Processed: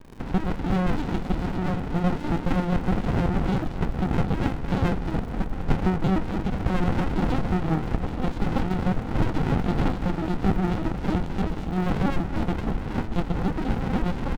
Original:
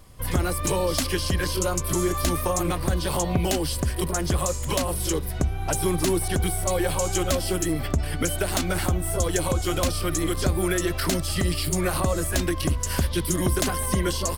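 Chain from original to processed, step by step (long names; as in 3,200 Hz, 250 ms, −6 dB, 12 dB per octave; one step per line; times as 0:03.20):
wavefolder on the positive side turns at −24 dBFS
multi-voice chorus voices 4, 0.18 Hz, delay 15 ms, depth 3.9 ms
linear-prediction vocoder at 8 kHz pitch kept
high-frequency loss of the air 170 metres
surface crackle 280 per second −43 dBFS
flat-topped bell 750 Hz +12.5 dB
phaser with its sweep stopped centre 390 Hz, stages 6
double-tracking delay 26 ms −13 dB
feedback echo with a low-pass in the loop 228 ms, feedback 81%, low-pass 2,100 Hz, level −13.5 dB
windowed peak hold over 65 samples
level +5 dB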